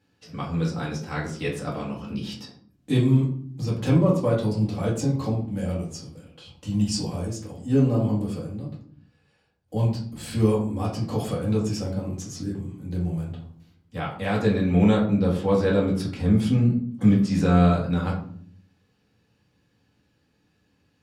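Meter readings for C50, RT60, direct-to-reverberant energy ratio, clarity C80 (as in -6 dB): 6.5 dB, 0.55 s, -6.0 dB, 11.0 dB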